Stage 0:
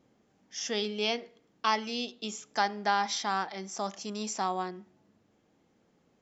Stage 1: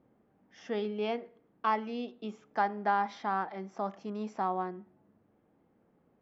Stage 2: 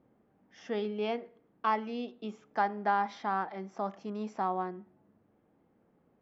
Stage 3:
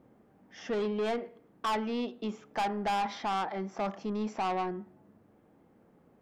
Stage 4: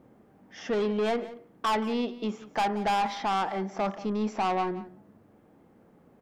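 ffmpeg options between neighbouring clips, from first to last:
ffmpeg -i in.wav -af "lowpass=1500" out.wav
ffmpeg -i in.wav -af anull out.wav
ffmpeg -i in.wav -af "asoftclip=type=tanh:threshold=-33dB,volume=6.5dB" out.wav
ffmpeg -i in.wav -af "aecho=1:1:177:0.141,volume=4dB" out.wav

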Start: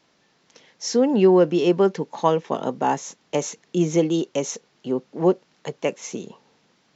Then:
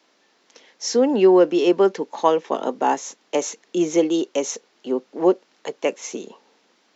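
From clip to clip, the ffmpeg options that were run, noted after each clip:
ffmpeg -i in.wav -af "highpass=frequency=250:width=0.5412,highpass=frequency=250:width=1.3066,volume=2dB" out.wav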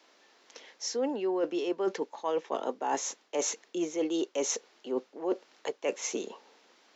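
ffmpeg -i in.wav -af "bass=frequency=250:gain=-10,treble=frequency=4000:gain=-1,areverse,acompressor=threshold=-27dB:ratio=12,areverse" out.wav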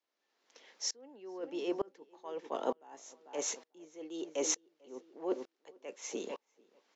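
ffmpeg -i in.wav -filter_complex "[0:a]asplit=2[link_01][link_02];[link_02]adelay=444,lowpass=frequency=2700:poles=1,volume=-12.5dB,asplit=2[link_03][link_04];[link_04]adelay=444,lowpass=frequency=2700:poles=1,volume=0.33,asplit=2[link_05][link_06];[link_06]adelay=444,lowpass=frequency=2700:poles=1,volume=0.33[link_07];[link_01][link_03][link_05][link_07]amix=inputs=4:normalize=0,aeval=exprs='val(0)*pow(10,-30*if(lt(mod(-1.1*n/s,1),2*abs(-1.1)/1000),1-mod(-1.1*n/s,1)/(2*abs(-1.1)/1000),(mod(-1.1*n/s,1)-2*abs(-1.1)/1000)/(1-2*abs(-1.1)/1000))/20)':channel_layout=same,volume=1dB" out.wav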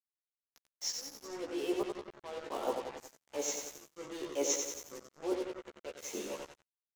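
ffmpeg -i in.wav -filter_complex "[0:a]asplit=2[link_01][link_02];[link_02]aecho=0:1:91|182|273|364|455|546|637|728:0.531|0.308|0.179|0.104|0.0601|0.0348|0.0202|0.0117[link_03];[link_01][link_03]amix=inputs=2:normalize=0,acrusher=bits=6:mix=0:aa=0.5,asplit=2[link_04][link_05];[link_05]adelay=14,volume=-2dB[link_06];[link_04][link_06]amix=inputs=2:normalize=0,volume=-3dB" out.wav

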